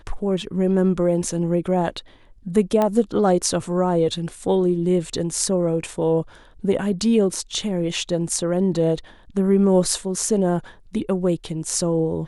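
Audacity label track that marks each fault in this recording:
2.820000	2.820000	pop -9 dBFS

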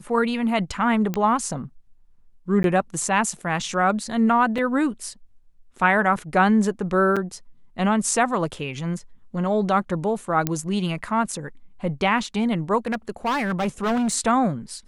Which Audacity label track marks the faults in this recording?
1.140000	1.140000	pop -12 dBFS
2.630000	2.640000	gap 12 ms
4.580000	4.580000	gap 2.6 ms
7.160000	7.170000	gap 6 ms
10.470000	10.470000	pop -7 dBFS
12.860000	14.150000	clipped -19.5 dBFS

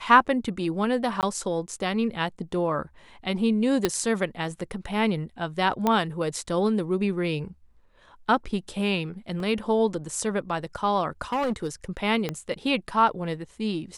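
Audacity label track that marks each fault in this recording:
1.210000	1.230000	gap 18 ms
3.850000	3.850000	pop -7 dBFS
5.870000	5.870000	pop -10 dBFS
9.400000	9.400000	gap 2.1 ms
11.320000	11.670000	clipped -22.5 dBFS
12.290000	12.290000	pop -14 dBFS

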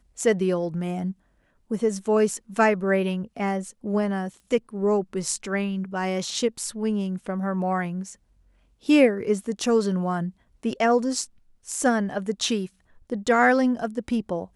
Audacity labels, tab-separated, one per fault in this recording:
4.400000	4.400000	pop -39 dBFS

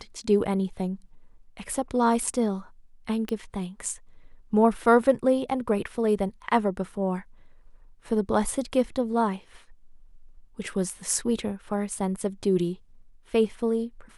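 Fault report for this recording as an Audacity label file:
3.290000	3.290000	pop -17 dBFS

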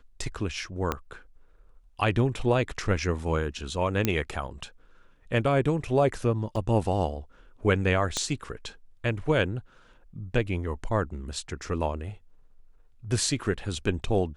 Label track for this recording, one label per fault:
0.920000	0.920000	pop -13 dBFS
4.050000	4.050000	pop -9 dBFS
6.560000	6.560000	gap 4.9 ms
8.170000	8.170000	pop -14 dBFS

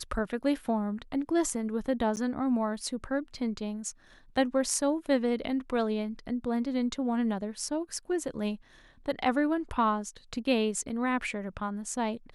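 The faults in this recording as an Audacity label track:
2.160000	2.170000	gap 9.6 ms

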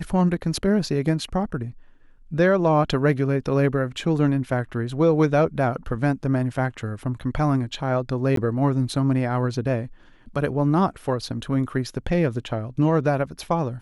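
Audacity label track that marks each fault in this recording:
8.360000	8.370000	gap 13 ms

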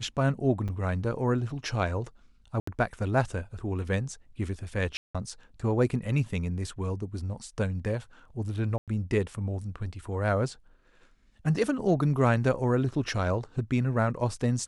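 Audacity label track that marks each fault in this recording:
0.680000	0.690000	gap 6 ms
2.600000	2.670000	gap 74 ms
4.970000	5.150000	gap 0.176 s
8.780000	8.880000	gap 97 ms

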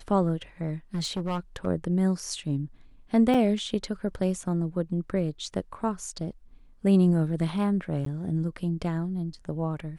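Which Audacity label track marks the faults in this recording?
0.940000	1.670000	clipped -25.5 dBFS
3.340000	3.350000	gap 5.1 ms
8.050000	8.060000	gap

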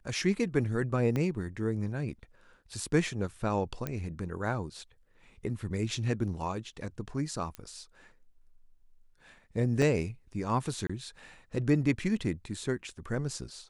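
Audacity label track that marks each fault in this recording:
1.160000	1.160000	pop -19 dBFS
3.870000	3.870000	pop -19 dBFS
7.550000	7.550000	pop -24 dBFS
9.820000	9.820000	gap 3.3 ms
10.870000	10.890000	gap 25 ms

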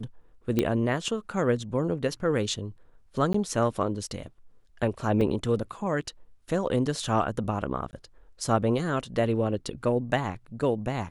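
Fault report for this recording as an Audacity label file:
0.590000	0.590000	pop -11 dBFS
3.330000	3.340000	gap 14 ms
5.210000	5.210000	gap 3.6 ms
7.910000	7.930000	gap 19 ms

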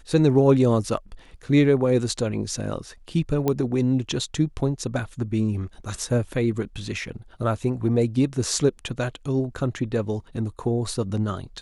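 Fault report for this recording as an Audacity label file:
3.480000	3.480000	pop -10 dBFS

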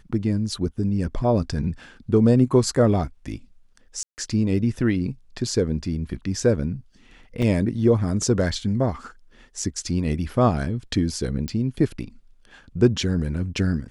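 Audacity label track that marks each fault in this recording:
4.030000	4.180000	gap 0.149 s
7.420000	7.420000	gap 4.7 ms
11.480000	11.480000	pop -15 dBFS

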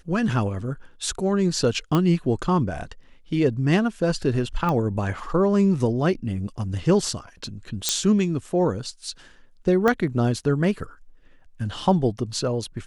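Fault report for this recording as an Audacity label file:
1.950000	1.950000	pop -10 dBFS
4.690000	4.690000	pop -14 dBFS
7.890000	7.890000	pop -4 dBFS
9.880000	9.880000	pop -9 dBFS

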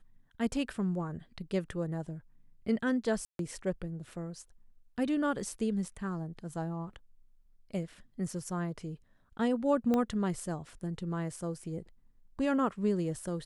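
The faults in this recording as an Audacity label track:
3.250000	3.390000	gap 0.142 s
9.940000	9.940000	pop -18 dBFS

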